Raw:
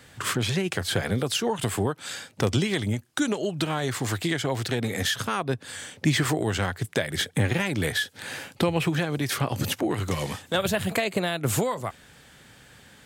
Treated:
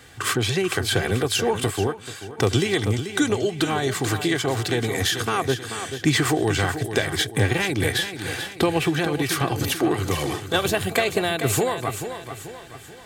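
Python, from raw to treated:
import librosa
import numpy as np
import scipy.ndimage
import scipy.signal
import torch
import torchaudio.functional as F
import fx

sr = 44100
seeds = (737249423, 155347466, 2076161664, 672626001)

y = x + 0.46 * np.pad(x, (int(2.6 * sr / 1000.0), 0))[:len(x)]
y = fx.echo_feedback(y, sr, ms=436, feedback_pct=45, wet_db=-9.5)
y = fx.upward_expand(y, sr, threshold_db=-35.0, expansion=1.5, at=(1.7, 2.37), fade=0.02)
y = y * librosa.db_to_amplitude(3.0)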